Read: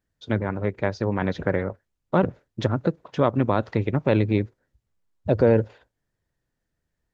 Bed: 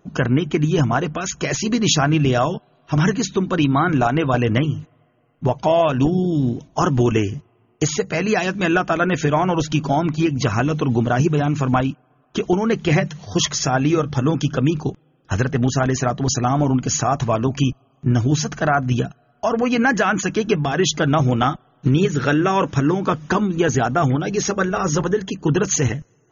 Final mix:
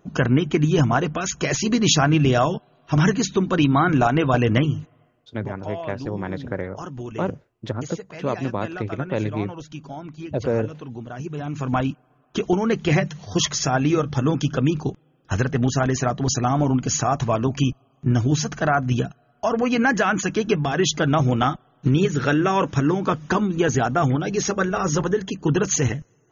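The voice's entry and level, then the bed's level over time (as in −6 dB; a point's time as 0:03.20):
5.05 s, −4.5 dB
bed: 0:05.04 −0.5 dB
0:05.53 −16.5 dB
0:11.14 −16.5 dB
0:11.87 −2 dB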